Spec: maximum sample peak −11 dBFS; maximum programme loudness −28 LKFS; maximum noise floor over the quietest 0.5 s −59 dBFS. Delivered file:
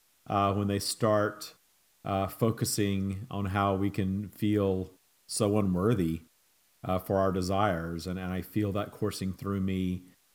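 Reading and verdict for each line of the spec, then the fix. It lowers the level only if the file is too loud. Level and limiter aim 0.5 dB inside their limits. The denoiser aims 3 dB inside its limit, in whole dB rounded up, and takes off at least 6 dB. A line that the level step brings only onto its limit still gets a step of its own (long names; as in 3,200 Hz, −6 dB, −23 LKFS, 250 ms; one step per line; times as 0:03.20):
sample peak −12.0 dBFS: in spec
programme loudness −30.5 LKFS: in spec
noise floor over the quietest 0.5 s −67 dBFS: in spec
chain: no processing needed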